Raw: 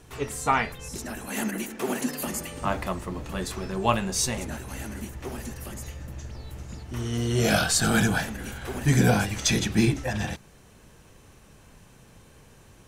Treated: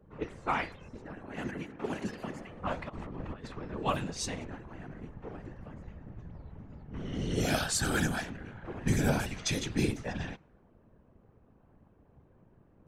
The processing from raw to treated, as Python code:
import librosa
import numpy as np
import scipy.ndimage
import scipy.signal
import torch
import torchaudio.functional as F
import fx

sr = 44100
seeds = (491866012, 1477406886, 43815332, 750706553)

y = fx.env_lowpass(x, sr, base_hz=820.0, full_db=-19.0)
y = fx.over_compress(y, sr, threshold_db=-35.0, ratio=-0.5, at=(2.88, 3.46), fade=0.02)
y = fx.whisperise(y, sr, seeds[0])
y = y * librosa.db_to_amplitude(-7.5)